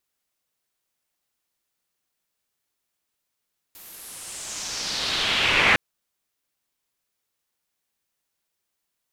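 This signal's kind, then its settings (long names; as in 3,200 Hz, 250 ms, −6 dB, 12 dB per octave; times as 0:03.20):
filter sweep on noise white, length 2.01 s lowpass, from 15,000 Hz, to 2,100 Hz, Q 2.6, exponential, gain ramp +35 dB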